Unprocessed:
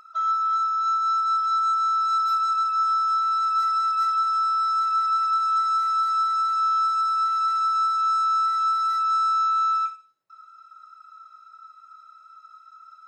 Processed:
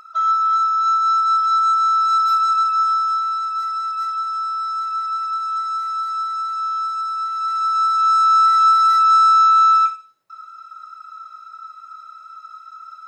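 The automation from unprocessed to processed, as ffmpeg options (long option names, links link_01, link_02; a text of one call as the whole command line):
ffmpeg -i in.wav -af "volume=16.5dB,afade=type=out:start_time=2.63:duration=0.87:silence=0.446684,afade=type=in:start_time=7.34:duration=1.2:silence=0.298538" out.wav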